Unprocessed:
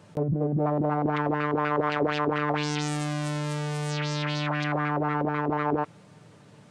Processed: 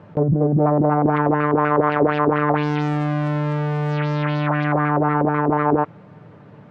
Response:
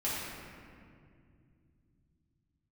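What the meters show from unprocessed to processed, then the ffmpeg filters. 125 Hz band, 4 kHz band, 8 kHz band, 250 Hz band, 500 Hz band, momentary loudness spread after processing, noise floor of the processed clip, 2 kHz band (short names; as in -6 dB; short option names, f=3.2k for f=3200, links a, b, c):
+8.5 dB, -4.0 dB, under -15 dB, +8.5 dB, +8.5 dB, 5 LU, -45 dBFS, +5.0 dB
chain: -af "lowpass=1.7k,volume=8.5dB"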